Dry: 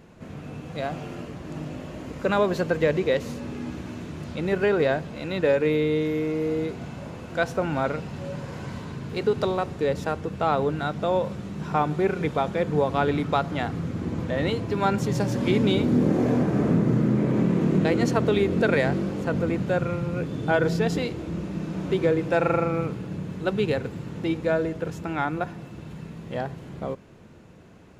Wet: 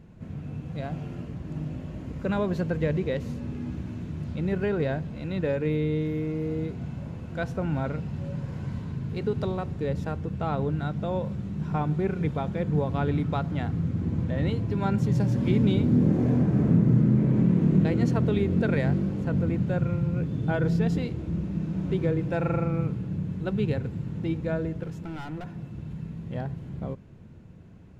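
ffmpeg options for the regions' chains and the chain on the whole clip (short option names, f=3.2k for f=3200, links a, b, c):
-filter_complex "[0:a]asettb=1/sr,asplit=3[a][b][c];[a]atrim=end=24.834[d];[b]atrim=start=24.83:end=25.55,asetpts=PTS-STARTPTS,afade=t=in:d=0.004:c=qsin,afade=t=out:st=0.716:d=0.004:c=qsin,highpass=f=160:p=1,asoftclip=type=hard:threshold=-29dB[e];[c]atrim=start=25.546[f];[d][e]acrossfade=d=0.004:c1=hsin:c2=qsin[g];[g][f]acrossfade=d=0.004:c1=qsin:c2=hsin,bass=f=250:g=13,treble=f=4k:g=-3,bandreject=f=1.2k:w=24,volume=-8dB"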